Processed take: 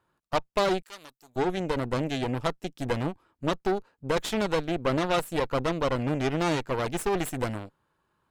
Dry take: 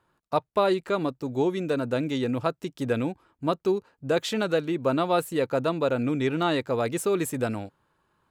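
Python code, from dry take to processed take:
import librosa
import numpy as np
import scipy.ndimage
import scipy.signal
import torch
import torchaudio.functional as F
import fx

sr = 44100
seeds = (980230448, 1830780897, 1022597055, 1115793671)

y = fx.cheby_harmonics(x, sr, harmonics=(8,), levels_db=(-14,), full_scale_db=-9.5)
y = fx.pre_emphasis(y, sr, coefficient=0.97, at=(0.82, 1.36))
y = y * librosa.db_to_amplitude(-3.5)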